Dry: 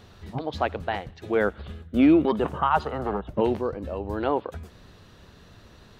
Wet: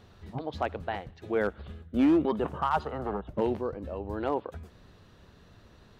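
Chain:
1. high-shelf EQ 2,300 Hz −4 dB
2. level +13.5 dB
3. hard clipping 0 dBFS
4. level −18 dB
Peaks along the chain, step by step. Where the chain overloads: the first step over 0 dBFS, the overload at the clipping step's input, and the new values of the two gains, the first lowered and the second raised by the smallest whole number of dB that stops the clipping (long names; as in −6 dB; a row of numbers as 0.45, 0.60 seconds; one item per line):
−10.0, +3.5, 0.0, −18.0 dBFS
step 2, 3.5 dB
step 2 +9.5 dB, step 4 −14 dB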